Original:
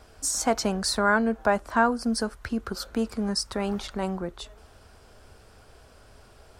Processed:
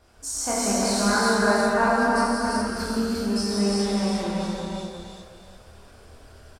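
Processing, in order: feedback echo 0.352 s, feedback 34%, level -4 dB; chorus voices 2, 0.34 Hz, delay 27 ms, depth 1.9 ms; non-linear reverb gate 0.45 s flat, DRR -7 dB; gain -3 dB

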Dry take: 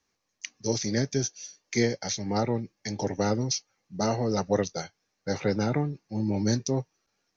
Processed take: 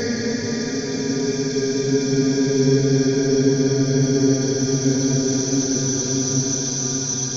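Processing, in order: buzz 120 Hz, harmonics 13, -48 dBFS -3 dB/oct; grains 0.1 s, grains 18/s, spray 32 ms, pitch spread up and down by 0 st; Paulstretch 30×, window 0.25 s, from 1.05; on a send: reverb, pre-delay 4 ms, DRR 3 dB; on the sum: gain +7.5 dB

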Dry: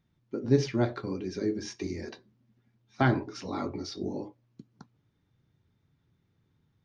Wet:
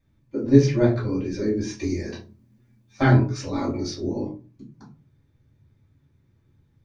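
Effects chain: 1.77–3.91 high shelf 5900 Hz +8.5 dB; reverb RT60 0.35 s, pre-delay 3 ms, DRR -5.5 dB; gain -5.5 dB

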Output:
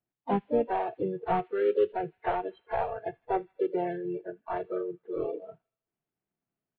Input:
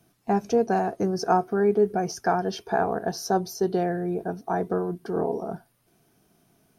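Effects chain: CVSD 16 kbps; high shelf 2300 Hz -7.5 dB; harmoniser -4 st -17 dB, +4 st -9 dB; spectral noise reduction 24 dB; thin delay 79 ms, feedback 57%, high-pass 2400 Hz, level -20 dB; gain -3.5 dB

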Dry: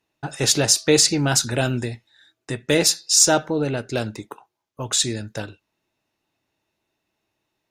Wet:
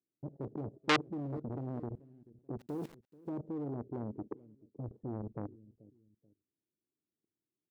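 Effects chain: inverse Chebyshev low-pass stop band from 2200 Hz, stop band 80 dB; in parallel at -5 dB: overloaded stage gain 22 dB; 1.41–1.92 on the sum: compressor 6:1, threshold -30 dBFS, peak gain reduction 11.5 dB; HPF 280 Hz 6 dB/oct; 2.59–3.26 requantised 8-bit, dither none; 4.26–5.22 tilt -2 dB/oct; level quantiser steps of 20 dB; feedback echo 0.434 s, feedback 31%, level -21.5 dB; core saturation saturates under 2700 Hz; gain +3.5 dB

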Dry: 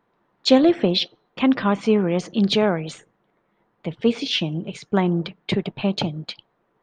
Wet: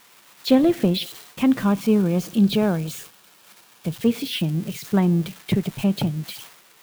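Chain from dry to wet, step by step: switching spikes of -19.5 dBFS; tone controls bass +10 dB, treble -6 dB; gate -35 dBFS, range -10 dB; 1.62–3.96 notch 2000 Hz, Q 8.1; gain -4.5 dB

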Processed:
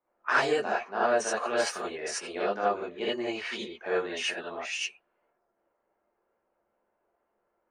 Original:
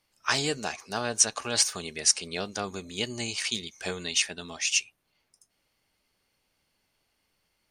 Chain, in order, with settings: low-pass opened by the level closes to 1100 Hz, open at -23.5 dBFS; three-band isolator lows -20 dB, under 270 Hz, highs -20 dB, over 2100 Hz; non-linear reverb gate 0.1 s rising, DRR -8 dB; gain -2 dB

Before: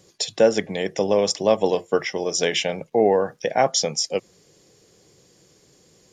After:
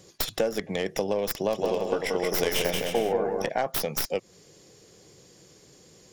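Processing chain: tracing distortion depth 0.29 ms; compressor 4:1, threshold -27 dBFS, peak gain reduction 14 dB; 1.33–3.49 bouncing-ball echo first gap 0.18 s, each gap 0.7×, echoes 5; gain +2 dB

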